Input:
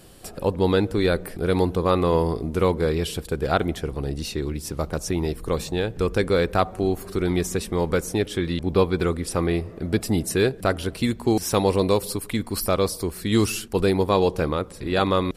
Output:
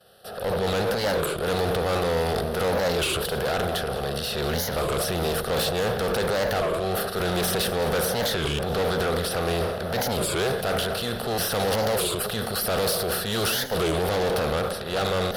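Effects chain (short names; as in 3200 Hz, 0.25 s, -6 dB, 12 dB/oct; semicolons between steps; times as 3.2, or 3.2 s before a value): per-bin compression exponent 0.6; HPF 270 Hz 6 dB/oct; expander -24 dBFS; AGC; transient shaper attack -4 dB, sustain +9 dB; fixed phaser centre 1500 Hz, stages 8; tube stage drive 23 dB, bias 0.4; echo with dull and thin repeats by turns 0.106 s, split 1100 Hz, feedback 66%, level -12.5 dB; record warp 33 1/3 rpm, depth 250 cents; gain +2 dB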